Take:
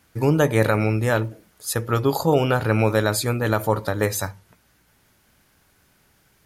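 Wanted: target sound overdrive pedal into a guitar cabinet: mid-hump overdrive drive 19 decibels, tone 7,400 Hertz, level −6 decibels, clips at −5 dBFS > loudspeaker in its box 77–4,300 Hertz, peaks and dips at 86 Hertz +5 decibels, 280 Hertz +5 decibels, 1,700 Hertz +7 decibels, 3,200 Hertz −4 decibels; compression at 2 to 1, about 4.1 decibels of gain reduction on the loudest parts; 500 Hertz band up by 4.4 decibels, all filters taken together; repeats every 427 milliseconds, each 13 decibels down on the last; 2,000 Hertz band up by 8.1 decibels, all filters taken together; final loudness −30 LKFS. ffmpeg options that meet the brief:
ffmpeg -i in.wav -filter_complex "[0:a]equalizer=frequency=500:width_type=o:gain=4.5,equalizer=frequency=2000:width_type=o:gain=4.5,acompressor=threshold=-18dB:ratio=2,aecho=1:1:427|854|1281:0.224|0.0493|0.0108,asplit=2[link_01][link_02];[link_02]highpass=frequency=720:poles=1,volume=19dB,asoftclip=type=tanh:threshold=-5dB[link_03];[link_01][link_03]amix=inputs=2:normalize=0,lowpass=frequency=7400:poles=1,volume=-6dB,highpass=77,equalizer=frequency=86:width_type=q:width=4:gain=5,equalizer=frequency=280:width_type=q:width=4:gain=5,equalizer=frequency=1700:width_type=q:width=4:gain=7,equalizer=frequency=3200:width_type=q:width=4:gain=-4,lowpass=frequency=4300:width=0.5412,lowpass=frequency=4300:width=1.3066,volume=-14.5dB" out.wav

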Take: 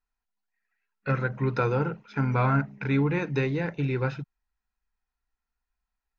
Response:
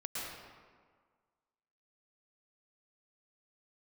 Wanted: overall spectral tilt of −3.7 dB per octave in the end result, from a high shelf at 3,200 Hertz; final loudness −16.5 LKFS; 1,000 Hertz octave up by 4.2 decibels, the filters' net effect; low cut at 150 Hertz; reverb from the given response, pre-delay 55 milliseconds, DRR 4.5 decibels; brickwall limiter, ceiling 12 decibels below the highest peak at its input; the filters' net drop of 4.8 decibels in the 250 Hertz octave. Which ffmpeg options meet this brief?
-filter_complex "[0:a]highpass=150,equalizer=frequency=250:width_type=o:gain=-5.5,equalizer=frequency=1000:width_type=o:gain=6.5,highshelf=frequency=3200:gain=-4.5,alimiter=limit=-23dB:level=0:latency=1,asplit=2[link_01][link_02];[1:a]atrim=start_sample=2205,adelay=55[link_03];[link_02][link_03]afir=irnorm=-1:irlink=0,volume=-7dB[link_04];[link_01][link_04]amix=inputs=2:normalize=0,volume=16dB"

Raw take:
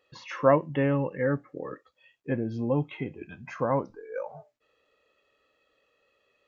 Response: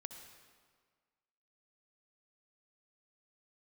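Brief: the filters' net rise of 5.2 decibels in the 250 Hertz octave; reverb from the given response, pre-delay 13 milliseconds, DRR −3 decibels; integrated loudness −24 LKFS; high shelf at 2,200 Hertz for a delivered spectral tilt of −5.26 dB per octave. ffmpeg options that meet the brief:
-filter_complex "[0:a]equalizer=frequency=250:width_type=o:gain=6,highshelf=frequency=2200:gain=4.5,asplit=2[link_01][link_02];[1:a]atrim=start_sample=2205,adelay=13[link_03];[link_02][link_03]afir=irnorm=-1:irlink=0,volume=7dB[link_04];[link_01][link_04]amix=inputs=2:normalize=0,volume=-2dB"

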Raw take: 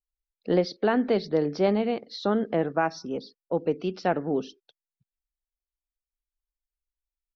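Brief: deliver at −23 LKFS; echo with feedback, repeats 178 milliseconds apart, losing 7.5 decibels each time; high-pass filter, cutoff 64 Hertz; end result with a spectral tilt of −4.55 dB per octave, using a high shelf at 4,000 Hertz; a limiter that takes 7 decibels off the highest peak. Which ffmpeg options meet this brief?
ffmpeg -i in.wav -af "highpass=64,highshelf=frequency=4000:gain=8,alimiter=limit=-17.5dB:level=0:latency=1,aecho=1:1:178|356|534|712|890:0.422|0.177|0.0744|0.0312|0.0131,volume=6dB" out.wav

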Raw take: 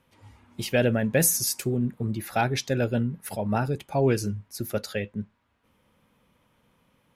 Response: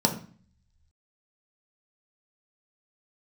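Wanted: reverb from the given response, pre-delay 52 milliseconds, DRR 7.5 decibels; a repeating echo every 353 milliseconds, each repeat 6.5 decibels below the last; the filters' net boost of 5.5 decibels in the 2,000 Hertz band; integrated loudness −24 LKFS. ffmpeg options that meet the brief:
-filter_complex "[0:a]equalizer=frequency=2000:width_type=o:gain=7.5,aecho=1:1:353|706|1059|1412|1765|2118:0.473|0.222|0.105|0.0491|0.0231|0.0109,asplit=2[link_01][link_02];[1:a]atrim=start_sample=2205,adelay=52[link_03];[link_02][link_03]afir=irnorm=-1:irlink=0,volume=-19.5dB[link_04];[link_01][link_04]amix=inputs=2:normalize=0,volume=-1.5dB"

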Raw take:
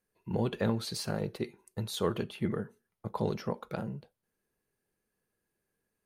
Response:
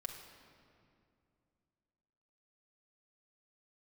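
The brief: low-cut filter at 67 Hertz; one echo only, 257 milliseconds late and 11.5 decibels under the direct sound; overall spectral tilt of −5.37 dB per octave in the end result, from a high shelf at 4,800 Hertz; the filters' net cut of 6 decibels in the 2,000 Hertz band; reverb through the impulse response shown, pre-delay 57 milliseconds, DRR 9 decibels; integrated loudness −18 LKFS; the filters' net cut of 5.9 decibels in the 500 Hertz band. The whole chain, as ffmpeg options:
-filter_complex "[0:a]highpass=67,equalizer=frequency=500:width_type=o:gain=-7,equalizer=frequency=2000:width_type=o:gain=-8.5,highshelf=frequency=4800:gain=4,aecho=1:1:257:0.266,asplit=2[link_01][link_02];[1:a]atrim=start_sample=2205,adelay=57[link_03];[link_02][link_03]afir=irnorm=-1:irlink=0,volume=-7dB[link_04];[link_01][link_04]amix=inputs=2:normalize=0,volume=18.5dB"

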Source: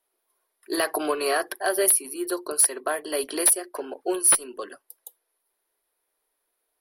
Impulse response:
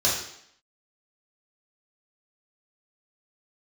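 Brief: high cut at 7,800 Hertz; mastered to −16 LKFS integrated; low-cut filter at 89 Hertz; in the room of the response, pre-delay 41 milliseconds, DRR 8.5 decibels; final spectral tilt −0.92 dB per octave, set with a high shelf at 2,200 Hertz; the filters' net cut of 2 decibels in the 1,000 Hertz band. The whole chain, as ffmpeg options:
-filter_complex "[0:a]highpass=89,lowpass=7800,equalizer=frequency=1000:width_type=o:gain=-4.5,highshelf=frequency=2200:gain=7,asplit=2[link_01][link_02];[1:a]atrim=start_sample=2205,adelay=41[link_03];[link_02][link_03]afir=irnorm=-1:irlink=0,volume=-22dB[link_04];[link_01][link_04]amix=inputs=2:normalize=0,volume=6.5dB"

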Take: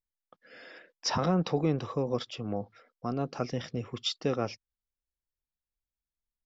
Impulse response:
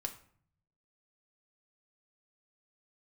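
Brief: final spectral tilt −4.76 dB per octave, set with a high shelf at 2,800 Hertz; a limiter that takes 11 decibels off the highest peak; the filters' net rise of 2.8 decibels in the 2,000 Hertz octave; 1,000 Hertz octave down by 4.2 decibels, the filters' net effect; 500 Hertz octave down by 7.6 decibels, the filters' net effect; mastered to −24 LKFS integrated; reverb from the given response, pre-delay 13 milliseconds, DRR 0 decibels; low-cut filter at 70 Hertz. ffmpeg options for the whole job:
-filter_complex "[0:a]highpass=70,equalizer=frequency=500:width_type=o:gain=-8.5,equalizer=frequency=1000:width_type=o:gain=-4,equalizer=frequency=2000:width_type=o:gain=8.5,highshelf=frequency=2800:gain=-7.5,alimiter=level_in=5.5dB:limit=-24dB:level=0:latency=1,volume=-5.5dB,asplit=2[link_01][link_02];[1:a]atrim=start_sample=2205,adelay=13[link_03];[link_02][link_03]afir=irnorm=-1:irlink=0,volume=0.5dB[link_04];[link_01][link_04]amix=inputs=2:normalize=0,volume=13.5dB"

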